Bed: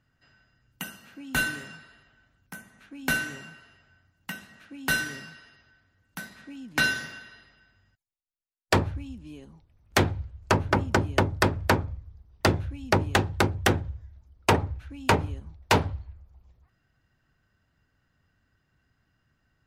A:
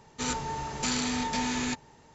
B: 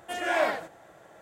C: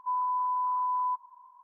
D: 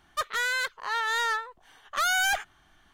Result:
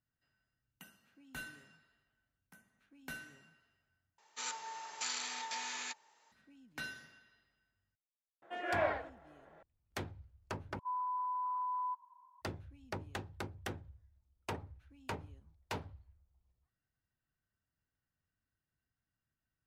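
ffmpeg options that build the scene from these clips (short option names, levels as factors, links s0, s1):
-filter_complex "[0:a]volume=0.1[s0];[1:a]highpass=900[s1];[2:a]highpass=240,lowpass=2400[s2];[s0]asplit=3[s3][s4][s5];[s3]atrim=end=4.184[s6];[s1]atrim=end=2.14,asetpts=PTS-STARTPTS,volume=0.422[s7];[s4]atrim=start=6.316:end=10.794[s8];[3:a]atrim=end=1.63,asetpts=PTS-STARTPTS,volume=0.376[s9];[s5]atrim=start=12.416[s10];[s2]atrim=end=1.21,asetpts=PTS-STARTPTS,volume=0.422,afade=t=in:d=0.004:c=hsin,afade=t=out:st=1.206:d=0.004:c=hsin,adelay=371322S[s11];[s6][s7]acrossfade=d=0.004:c1=hsin:c2=hsin[s12];[s12][s8]acrossfade=d=0.004:c1=hsin:c2=hsin[s13];[s13][s9]acrossfade=d=0.004:c1=hsin:c2=hsin[s14];[s14][s10]acrossfade=d=0.004:c1=hsin:c2=hsin[s15];[s15][s11]amix=inputs=2:normalize=0"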